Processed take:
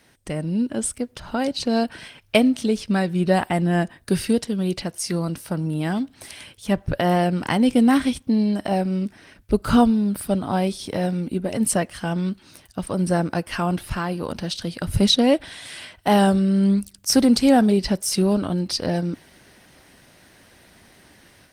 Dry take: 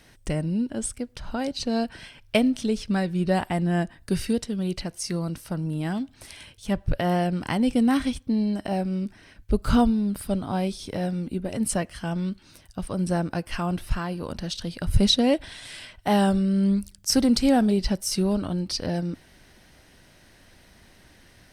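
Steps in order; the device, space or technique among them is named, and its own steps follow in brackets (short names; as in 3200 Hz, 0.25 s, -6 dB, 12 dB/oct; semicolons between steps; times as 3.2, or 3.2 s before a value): video call (HPF 150 Hz 6 dB/oct; AGC gain up to 6 dB; Opus 24 kbps 48000 Hz)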